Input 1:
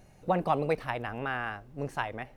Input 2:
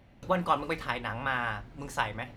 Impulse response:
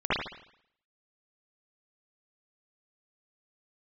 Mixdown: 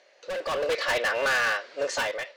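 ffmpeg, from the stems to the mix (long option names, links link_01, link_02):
-filter_complex "[0:a]asoftclip=type=tanh:threshold=-23.5dB,volume=1dB,asplit=2[link_01][link_02];[1:a]highpass=690,highshelf=frequency=2300:gain=11,volume=-3.5dB[link_03];[link_02]apad=whole_len=104395[link_04];[link_03][link_04]sidechaincompress=threshold=-31dB:ratio=8:attack=49:release=414[link_05];[link_01][link_05]amix=inputs=2:normalize=0,highpass=frequency=470:width=0.5412,highpass=frequency=470:width=1.3066,equalizer=frequency=550:width_type=q:width=4:gain=9,equalizer=frequency=820:width_type=q:width=4:gain=-8,equalizer=frequency=1800:width_type=q:width=4:gain=4,equalizer=frequency=4600:width_type=q:width=4:gain=6,lowpass=frequency=6300:width=0.5412,lowpass=frequency=6300:width=1.3066,asoftclip=type=hard:threshold=-32dB,dynaudnorm=framelen=220:gausssize=5:maxgain=10.5dB"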